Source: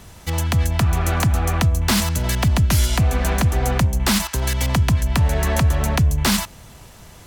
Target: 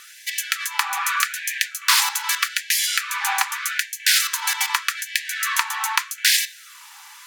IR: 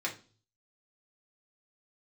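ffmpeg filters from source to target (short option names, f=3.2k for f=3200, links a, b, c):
-filter_complex "[0:a]asplit=2[a][b];[1:a]atrim=start_sample=2205[c];[b][c]afir=irnorm=-1:irlink=0,volume=-7.5dB[d];[a][d]amix=inputs=2:normalize=0,afftfilt=real='re*gte(b*sr/1024,750*pow(1600/750,0.5+0.5*sin(2*PI*0.82*pts/sr)))':imag='im*gte(b*sr/1024,750*pow(1600/750,0.5+0.5*sin(2*PI*0.82*pts/sr)))':win_size=1024:overlap=0.75,volume=2dB"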